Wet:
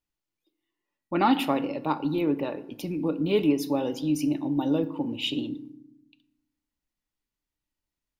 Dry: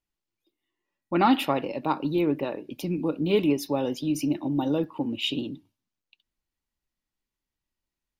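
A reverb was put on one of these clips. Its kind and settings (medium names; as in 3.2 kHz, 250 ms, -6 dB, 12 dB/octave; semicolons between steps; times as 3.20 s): FDN reverb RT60 0.82 s, low-frequency decay 1.55×, high-frequency decay 0.55×, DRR 11.5 dB; trim -1.5 dB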